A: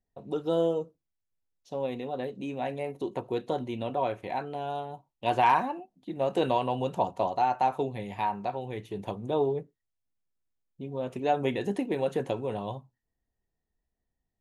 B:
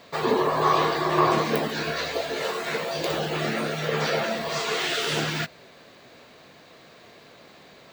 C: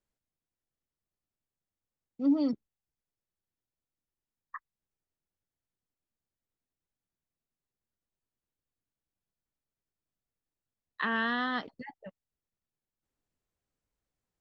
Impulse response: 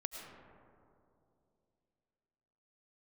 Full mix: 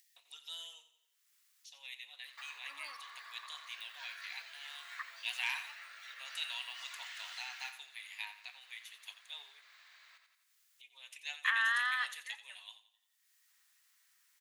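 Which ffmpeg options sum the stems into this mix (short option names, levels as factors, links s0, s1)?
-filter_complex "[0:a]aexciter=amount=4.6:drive=8.9:freq=2000,volume=0.141,asplit=2[s0][s1];[s1]volume=0.224[s2];[1:a]acompressor=threshold=0.0178:ratio=5,adelay=2250,volume=0.251,asplit=2[s3][s4];[s4]volume=0.355[s5];[2:a]adelay=450,volume=0.841,asplit=2[s6][s7];[s7]volume=0.141[s8];[s2][s5][s8]amix=inputs=3:normalize=0,aecho=0:1:87|174|261|348|435:1|0.36|0.13|0.0467|0.0168[s9];[s0][s3][s6][s9]amix=inputs=4:normalize=0,highpass=f=1200:w=0.5412,highpass=f=1200:w=1.3066,equalizer=f=1900:t=o:w=0.63:g=4.5,acompressor=mode=upward:threshold=0.00178:ratio=2.5"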